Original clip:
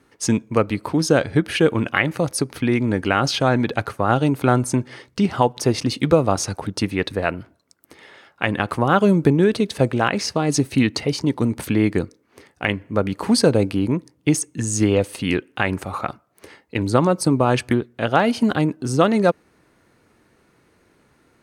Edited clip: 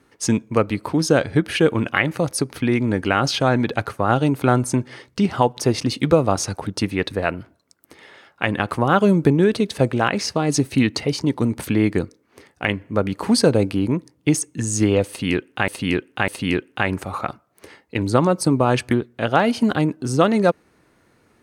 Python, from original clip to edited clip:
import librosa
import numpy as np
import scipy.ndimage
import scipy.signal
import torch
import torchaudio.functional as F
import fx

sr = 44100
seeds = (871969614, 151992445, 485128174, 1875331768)

y = fx.edit(x, sr, fx.repeat(start_s=15.08, length_s=0.6, count=3), tone=tone)